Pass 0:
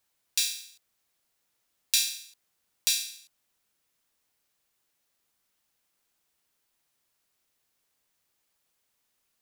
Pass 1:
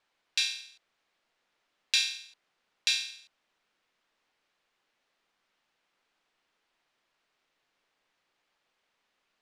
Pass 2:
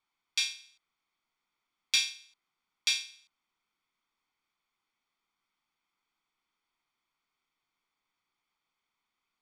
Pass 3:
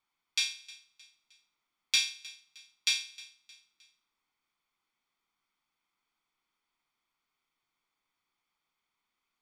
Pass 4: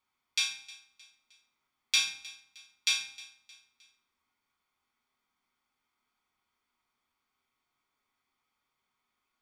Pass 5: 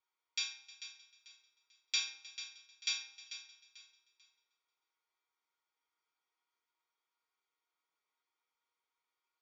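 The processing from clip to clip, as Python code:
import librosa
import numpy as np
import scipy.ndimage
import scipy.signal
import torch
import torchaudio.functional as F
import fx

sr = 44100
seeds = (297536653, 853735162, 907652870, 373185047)

y1 = scipy.signal.sosfilt(scipy.signal.butter(2, 3200.0, 'lowpass', fs=sr, output='sos'), x)
y1 = fx.peak_eq(y1, sr, hz=70.0, db=-13.5, octaves=2.7)
y1 = y1 * 10.0 ** (6.5 / 20.0)
y2 = y1 + 0.66 * np.pad(y1, (int(0.9 * sr / 1000.0), 0))[:len(y1)]
y2 = 10.0 ** (-12.0 / 20.0) * np.tanh(y2 / 10.0 ** (-12.0 / 20.0))
y2 = fx.upward_expand(y2, sr, threshold_db=-40.0, expansion=1.5)
y3 = fx.echo_feedback(y2, sr, ms=310, feedback_pct=44, wet_db=-20.5)
y4 = fx.rev_fdn(y3, sr, rt60_s=0.74, lf_ratio=1.25, hf_ratio=0.35, size_ms=74.0, drr_db=1.0)
y5 = fx.brickwall_bandpass(y4, sr, low_hz=280.0, high_hz=7500.0)
y5 = fx.comb_fb(y5, sr, f0_hz=470.0, decay_s=0.17, harmonics='all', damping=0.0, mix_pct=80)
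y5 = fx.echo_feedback(y5, sr, ms=442, feedback_pct=29, wet_db=-12.0)
y5 = y5 * 10.0 ** (3.0 / 20.0)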